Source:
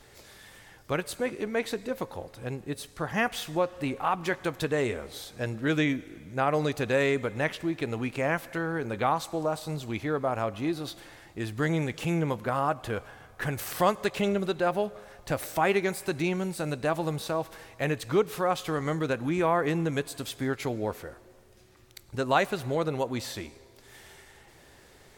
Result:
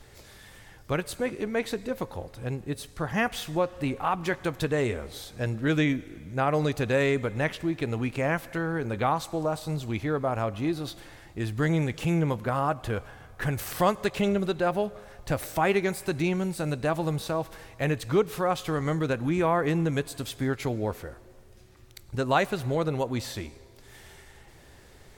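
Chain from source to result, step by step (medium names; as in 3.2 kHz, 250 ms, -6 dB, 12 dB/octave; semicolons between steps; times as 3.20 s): bass shelf 130 Hz +9 dB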